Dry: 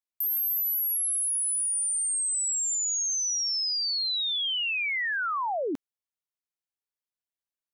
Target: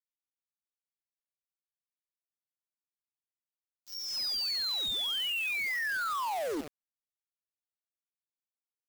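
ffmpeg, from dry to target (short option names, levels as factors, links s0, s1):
-filter_complex "[0:a]highpass=f=220:w=0.5412,highpass=f=220:w=1.3066,aresample=11025,asoftclip=type=tanh:threshold=0.0299,aresample=44100,asplit=2[s0][s1];[s1]adelay=66,lowpass=f=1700:p=1,volume=0.224,asplit=2[s2][s3];[s3]adelay=66,lowpass=f=1700:p=1,volume=0.52,asplit=2[s4][s5];[s5]adelay=66,lowpass=f=1700:p=1,volume=0.52,asplit=2[s6][s7];[s7]adelay=66,lowpass=f=1700:p=1,volume=0.52,asplit=2[s8][s9];[s9]adelay=66,lowpass=f=1700:p=1,volume=0.52[s10];[s0][s2][s4][s6][s8][s10]amix=inputs=6:normalize=0,acrusher=bits=6:mix=0:aa=0.000001,atempo=0.87"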